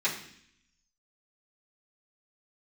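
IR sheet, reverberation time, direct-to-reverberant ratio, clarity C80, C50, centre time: 0.65 s, -11.0 dB, 11.0 dB, 8.0 dB, 24 ms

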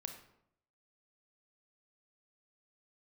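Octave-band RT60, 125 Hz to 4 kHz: 0.85 s, 0.80 s, 0.80 s, 0.70 s, 0.60 s, 0.50 s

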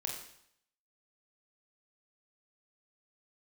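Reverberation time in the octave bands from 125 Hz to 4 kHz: 0.75 s, 0.70 s, 0.70 s, 0.70 s, 0.70 s, 0.70 s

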